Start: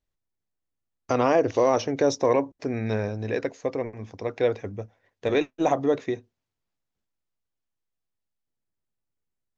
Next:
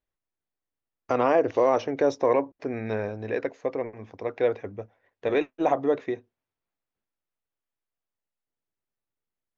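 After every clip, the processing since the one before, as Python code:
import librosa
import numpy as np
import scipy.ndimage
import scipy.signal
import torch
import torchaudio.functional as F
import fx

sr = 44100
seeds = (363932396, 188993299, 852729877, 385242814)

y = fx.bass_treble(x, sr, bass_db=-7, treble_db=-14)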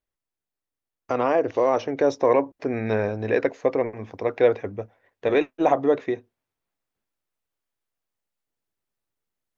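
y = fx.rider(x, sr, range_db=4, speed_s=2.0)
y = y * librosa.db_to_amplitude(3.5)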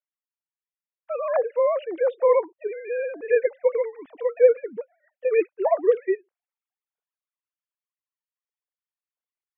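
y = fx.sine_speech(x, sr)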